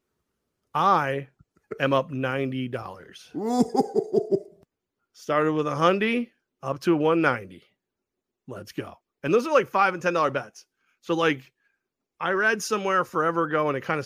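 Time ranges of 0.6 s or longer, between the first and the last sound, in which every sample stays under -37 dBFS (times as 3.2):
4.43–5.2
7.57–8.48
11.4–12.21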